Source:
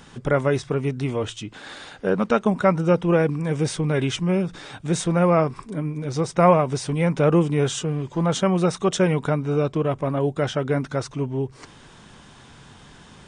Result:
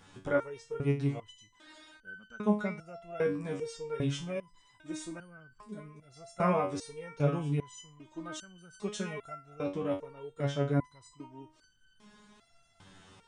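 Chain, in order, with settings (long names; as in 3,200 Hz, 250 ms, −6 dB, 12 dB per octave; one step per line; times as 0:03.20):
step-sequenced resonator 2.5 Hz 95–1,500 Hz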